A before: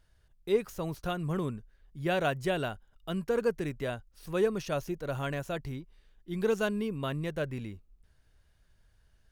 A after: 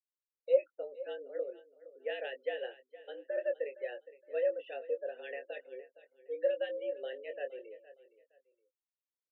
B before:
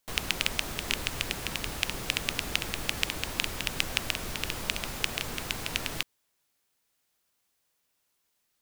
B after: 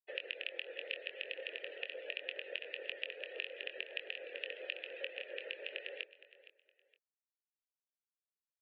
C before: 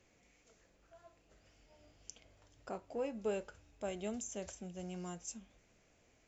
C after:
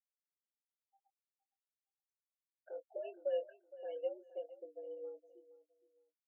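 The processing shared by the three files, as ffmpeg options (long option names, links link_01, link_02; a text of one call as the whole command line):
ffmpeg -i in.wav -filter_complex "[0:a]afftfilt=real='re*gte(hypot(re,im),0.0126)':imag='im*gte(hypot(re,im),0.0126)':win_size=1024:overlap=0.75,equalizer=frequency=800:width=0.59:gain=-11.5,acompressor=threshold=-41dB:ratio=2,highpass=frequency=280:width_type=q:width=0.5412,highpass=frequency=280:width_type=q:width=1.307,lowpass=frequency=3200:width_type=q:width=0.5176,lowpass=frequency=3200:width_type=q:width=0.7071,lowpass=frequency=3200:width_type=q:width=1.932,afreqshift=110,acrossover=split=2000[link_01][link_02];[link_01]aeval=exprs='val(0)*(1-0.5/2+0.5/2*cos(2*PI*7.1*n/s))':channel_layout=same[link_03];[link_02]aeval=exprs='val(0)*(1-0.5/2-0.5/2*cos(2*PI*7.1*n/s))':channel_layout=same[link_04];[link_03][link_04]amix=inputs=2:normalize=0,afreqshift=13,asplit=3[link_05][link_06][link_07];[link_05]bandpass=frequency=530:width_type=q:width=8,volume=0dB[link_08];[link_06]bandpass=frequency=1840:width_type=q:width=8,volume=-6dB[link_09];[link_07]bandpass=frequency=2480:width_type=q:width=8,volume=-9dB[link_10];[link_08][link_09][link_10]amix=inputs=3:normalize=0,asplit=2[link_11][link_12];[link_12]adelay=23,volume=-8dB[link_13];[link_11][link_13]amix=inputs=2:normalize=0,aecho=1:1:465|930:0.141|0.0367,volume=15.5dB" out.wav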